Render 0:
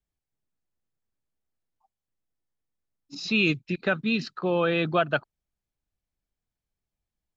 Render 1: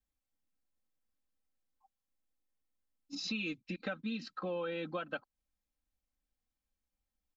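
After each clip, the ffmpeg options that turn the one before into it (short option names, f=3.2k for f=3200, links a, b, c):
-af "aecho=1:1:3.8:0.99,acompressor=threshold=-31dB:ratio=4,volume=-6dB"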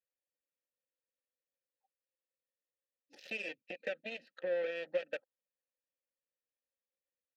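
-filter_complex "[0:a]aeval=exprs='0.0562*(cos(1*acos(clip(val(0)/0.0562,-1,1)))-cos(1*PI/2))+0.0126*(cos(7*acos(clip(val(0)/0.0562,-1,1)))-cos(7*PI/2))':c=same,asplit=3[a][b][c];[a]bandpass=f=530:t=q:w=8,volume=0dB[d];[b]bandpass=f=1.84k:t=q:w=8,volume=-6dB[e];[c]bandpass=f=2.48k:t=q:w=8,volume=-9dB[f];[d][e][f]amix=inputs=3:normalize=0,volume=10dB"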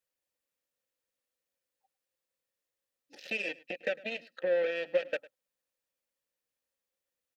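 -af "aecho=1:1:104:0.0891,volume=6dB"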